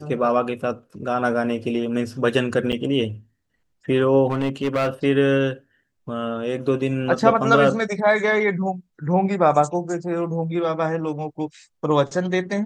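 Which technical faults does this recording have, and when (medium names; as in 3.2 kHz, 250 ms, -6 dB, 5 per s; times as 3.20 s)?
2.72–2.73 s: dropout 7.8 ms
4.27–4.90 s: clipped -17 dBFS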